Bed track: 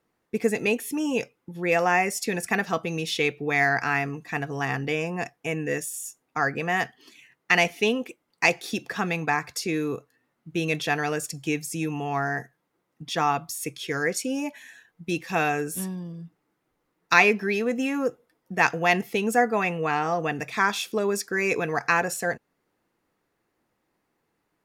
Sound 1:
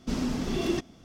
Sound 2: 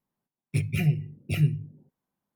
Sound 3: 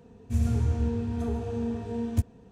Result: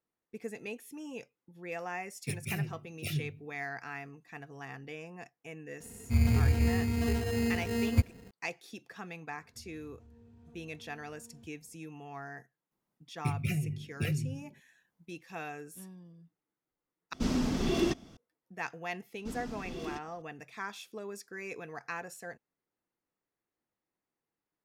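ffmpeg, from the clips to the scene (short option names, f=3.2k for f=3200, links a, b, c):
-filter_complex "[2:a]asplit=2[a][b];[3:a]asplit=2[c][d];[1:a]asplit=2[e][f];[0:a]volume=-17dB[g];[a]bass=f=250:g=-6,treble=f=4k:g=8[h];[c]acrusher=samples=19:mix=1:aa=0.000001[i];[d]acompressor=threshold=-37dB:ratio=6:attack=3.2:release=140:knee=1:detection=peak[j];[b]acompressor=threshold=-35dB:ratio=4:attack=73:release=49:knee=1:detection=peak[k];[g]asplit=2[l][m];[l]atrim=end=17.134[n];[e]atrim=end=1.04,asetpts=PTS-STARTPTS,volume=-0.5dB[o];[m]atrim=start=18.166[p];[h]atrim=end=2.35,asetpts=PTS-STARTPTS,volume=-6.5dB,afade=t=in:d=0.004:c=hsin,afade=t=out:st=2.346:d=0.004:c=hsin,adelay=1730[q];[i]atrim=end=2.51,asetpts=PTS-STARTPTS,afade=t=in:d=0.004:c=hsin,afade=t=out:st=2.506:d=0.004:c=hsin,adelay=5800[r];[j]atrim=end=2.51,asetpts=PTS-STARTPTS,volume=-17.5dB,afade=t=in:d=0.004:c=hsin,afade=t=out:st=2.506:d=0.004:c=hsin,adelay=9260[s];[k]atrim=end=2.35,asetpts=PTS-STARTPTS,volume=-1dB,afade=t=in:d=0.004:c=hsin,afade=t=out:st=2.346:d=0.004:c=hsin,adelay=12710[t];[f]atrim=end=1.04,asetpts=PTS-STARTPTS,volume=-12.5dB,afade=t=in:d=0.004:c=hsin,afade=t=out:st=1.036:d=0.004:c=hsin,adelay=19180[u];[n][o]acrossfade=d=0.004:c1=hsin:c2=hsin[v];[v][p]acrossfade=d=0.004:c1=hsin:c2=hsin[w];[w][q][r][s][t][u]amix=inputs=6:normalize=0"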